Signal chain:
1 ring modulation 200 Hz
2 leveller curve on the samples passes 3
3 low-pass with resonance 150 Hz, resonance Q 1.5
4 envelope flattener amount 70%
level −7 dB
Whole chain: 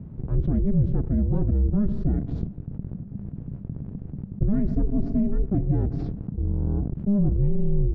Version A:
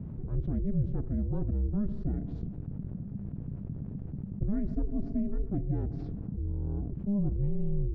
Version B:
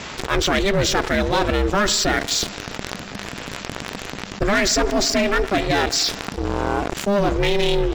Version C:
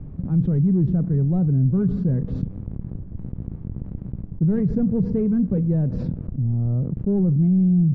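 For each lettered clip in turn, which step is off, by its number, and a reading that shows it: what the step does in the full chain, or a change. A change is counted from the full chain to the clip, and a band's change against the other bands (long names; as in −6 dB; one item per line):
2, change in momentary loudness spread −4 LU
3, 1 kHz band +24.0 dB
1, change in momentary loudness spread +2 LU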